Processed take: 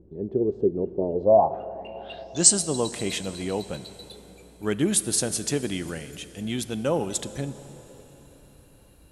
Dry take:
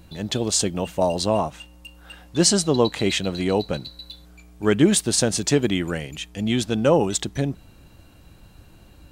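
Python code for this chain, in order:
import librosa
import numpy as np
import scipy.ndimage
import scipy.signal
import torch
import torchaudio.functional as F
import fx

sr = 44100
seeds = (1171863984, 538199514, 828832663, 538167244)

y = fx.filter_sweep_lowpass(x, sr, from_hz=400.0, to_hz=11000.0, start_s=1.13, end_s=2.61, q=6.9)
y = fx.rev_plate(y, sr, seeds[0], rt60_s=4.5, hf_ratio=0.8, predelay_ms=0, drr_db=13.0)
y = y * librosa.db_to_amplitude(-7.5)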